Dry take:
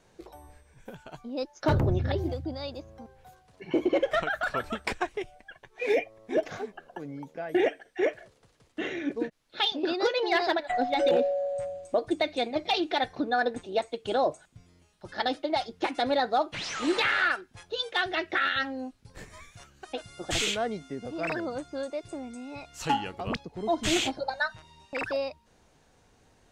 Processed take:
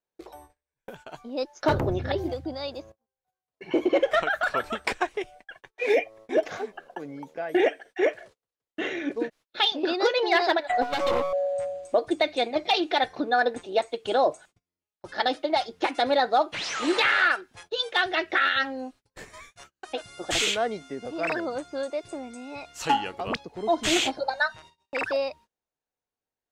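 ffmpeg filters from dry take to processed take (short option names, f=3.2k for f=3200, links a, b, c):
-filter_complex "[0:a]asettb=1/sr,asplit=3[a][b][c];[a]atrim=end=10.824[d];[b]atrim=start=10.82:end=11.33,asetpts=PTS-STARTPTS,afade=t=in:d=0.004:c=qsin,afade=t=out:st=0.506:d=0.004:c=qsin,aeval=exprs='max(val(0),0)':c=same[e];[c]atrim=start=11.326[f];[d][e]acrossfade=d=0.004:c1=hsin:c2=qsin[g];[g][f]acrossfade=d=0.004:c1=qsin:c2=hsin,asplit=2[h][i];[h]atrim=end=2.92,asetpts=PTS-STARTPTS,afade=t=out:st=2.916:d=0.004:c=hsin:silence=0.199526[j];[i]atrim=start=2.92,asetpts=PTS-STARTPTS,afade=t=in:d=0.8:silence=0.199526[k];[j][k]concat=n=2:v=0:a=1,bass=f=250:g=-9,treble=f=4k:g=-1,agate=range=-33dB:threshold=-52dB:ratio=16:detection=peak,volume=4dB"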